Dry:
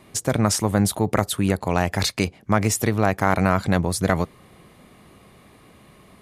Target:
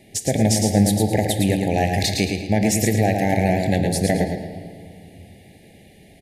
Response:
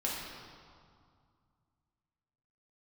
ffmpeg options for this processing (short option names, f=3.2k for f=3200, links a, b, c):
-filter_complex "[0:a]asuperstop=centerf=1200:order=12:qfactor=1.4,aecho=1:1:111|222|333|444:0.562|0.174|0.054|0.0168,asplit=2[a][b];[1:a]atrim=start_sample=2205,asetrate=41454,aresample=44100[c];[b][c]afir=irnorm=-1:irlink=0,volume=-10.5dB[d];[a][d]amix=inputs=2:normalize=0,volume=-1.5dB"